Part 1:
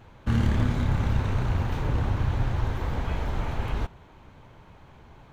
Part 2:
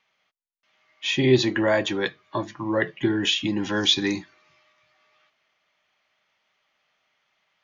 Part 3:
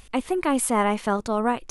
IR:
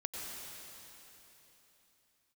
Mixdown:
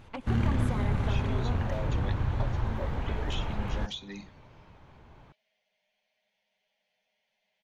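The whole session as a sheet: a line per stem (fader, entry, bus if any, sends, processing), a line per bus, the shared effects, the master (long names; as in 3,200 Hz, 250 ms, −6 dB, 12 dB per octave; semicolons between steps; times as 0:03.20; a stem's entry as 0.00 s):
−3.5 dB, 0.00 s, no bus, no send, no processing
0.0 dB, 0.05 s, bus A, no send, phaser with its sweep stopped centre 330 Hz, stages 6
−5.0 dB, 0.00 s, bus A, send −18.5 dB, parametric band 9,500 Hz −11.5 dB 0.58 octaves
bus A: 0.0 dB, flanger swept by the level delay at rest 9.7 ms, full sweep at −20.5 dBFS; downward compressor 4 to 1, threshold −38 dBFS, peak gain reduction 17.5 dB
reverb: on, RT60 3.6 s, pre-delay 86 ms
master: high-shelf EQ 5,200 Hz −7.5 dB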